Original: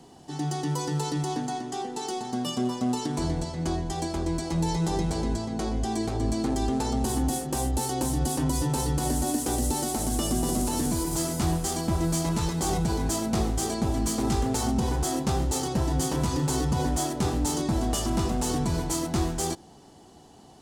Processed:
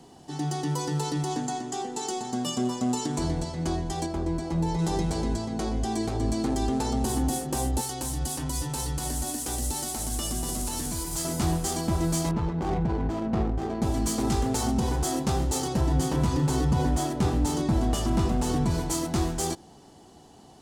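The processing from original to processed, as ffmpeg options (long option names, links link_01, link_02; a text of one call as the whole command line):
ffmpeg -i in.wav -filter_complex "[0:a]asettb=1/sr,asplit=3[link_01][link_02][link_03];[link_01]atrim=end=1.314[link_04];[link_02]atrim=start=1.31:end=3.19,asetpts=PTS-STARTPTS,afade=type=in:duration=0.004:curve=qsin,afade=type=out:start_time=1.876:duration=0.004:curve=qsin,equalizer=frequency=7200:width=3.8:gain=7[link_05];[link_03]atrim=start=3.186[link_06];[link_04][link_05]acrossfade=duration=0.004:curve1=hsin:curve2=qsin[link_07];[link_07][link_06]acrossfade=duration=0.004:curve1=qsin:curve2=hsin,asettb=1/sr,asplit=3[link_08][link_09][link_10];[link_08]atrim=end=4.064[link_11];[link_09]atrim=start=4.06:end=4.79,asetpts=PTS-STARTPTS,afade=type=in:duration=0.004:curve=qsin,afade=type=out:start_time=0.726:duration=0.004:curve=qsin,highshelf=frequency=2400:gain=-9.5[link_12];[link_10]atrim=start=4.786[link_13];[link_11][link_12]acrossfade=duration=0.004:curve1=hsin:curve2=qsin[link_14];[link_14][link_13]acrossfade=duration=0.004:curve1=qsin:curve2=hsin,asettb=1/sr,asplit=3[link_15][link_16][link_17];[link_15]atrim=end=7.814[link_18];[link_16]atrim=start=7.81:end=11.25,asetpts=PTS-STARTPTS,afade=type=in:duration=0.004:curve=qsin,afade=type=out:start_time=3.436:duration=0.004:curve=qsin,equalizer=frequency=320:width=0.36:gain=-8.5[link_19];[link_17]atrim=start=11.246[link_20];[link_18][link_19]acrossfade=duration=0.004:curve1=hsin:curve2=qsin[link_21];[link_21][link_20]acrossfade=duration=0.004:curve1=qsin:curve2=hsin,asettb=1/sr,asplit=3[link_22][link_23][link_24];[link_22]atrim=end=12.314[link_25];[link_23]atrim=start=12.31:end=13.82,asetpts=PTS-STARTPTS,afade=type=in:duration=0.004:curve=qsin,afade=type=out:start_time=1.506:duration=0.004:curve=qsin,adynamicsmooth=sensitivity=2:basefreq=800[link_26];[link_24]atrim=start=13.816[link_27];[link_25][link_26]acrossfade=duration=0.004:curve1=hsin:curve2=qsin[link_28];[link_28][link_27]acrossfade=duration=0.004:curve1=qsin:curve2=hsin,asettb=1/sr,asplit=3[link_29][link_30][link_31];[link_29]atrim=end=15.814[link_32];[link_30]atrim=start=15.81:end=18.71,asetpts=PTS-STARTPTS,afade=type=in:duration=0.004:curve=qsin,afade=type=out:start_time=2.896:duration=0.004:curve=qsin,bass=frequency=250:gain=3,treble=frequency=4000:gain=-5[link_33];[link_31]atrim=start=18.706[link_34];[link_32][link_33]acrossfade=duration=0.004:curve1=hsin:curve2=qsin[link_35];[link_35][link_34]acrossfade=duration=0.004:curve1=qsin:curve2=hsin" out.wav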